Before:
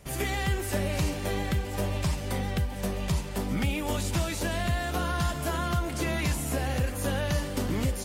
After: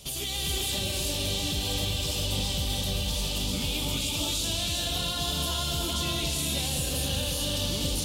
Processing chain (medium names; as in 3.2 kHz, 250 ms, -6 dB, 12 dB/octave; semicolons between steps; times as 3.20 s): resonant high shelf 2.5 kHz +10.5 dB, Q 3; peak limiter -23.5 dBFS, peak gain reduction 15.5 dB; gated-style reverb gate 440 ms rising, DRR -1 dB